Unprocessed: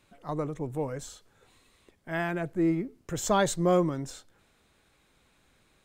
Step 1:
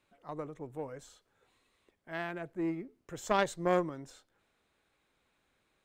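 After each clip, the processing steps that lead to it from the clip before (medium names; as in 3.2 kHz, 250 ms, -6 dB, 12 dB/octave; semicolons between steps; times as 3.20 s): tone controls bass -6 dB, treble -5 dB; Chebyshev shaper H 3 -14 dB, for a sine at -12 dBFS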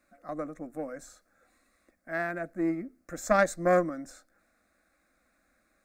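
static phaser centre 620 Hz, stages 8; trim +8 dB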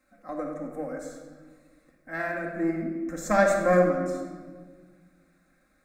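simulated room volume 1600 m³, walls mixed, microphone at 2.1 m; trim -1 dB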